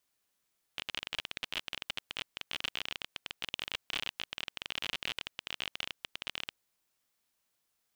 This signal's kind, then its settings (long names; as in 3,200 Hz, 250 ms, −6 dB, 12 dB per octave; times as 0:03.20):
Geiger counter clicks 31 per second −18.5 dBFS 5.80 s